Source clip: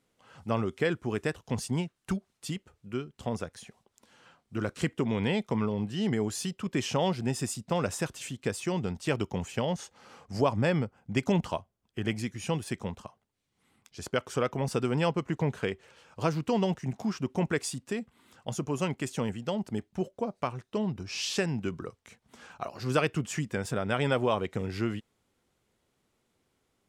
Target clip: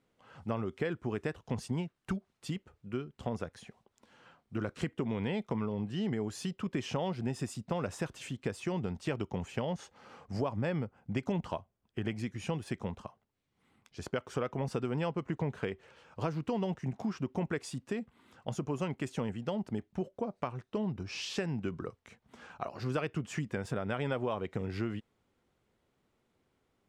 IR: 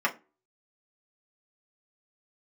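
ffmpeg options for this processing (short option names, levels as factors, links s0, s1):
-af "acompressor=threshold=0.0282:ratio=3,highshelf=f=4700:g=-12"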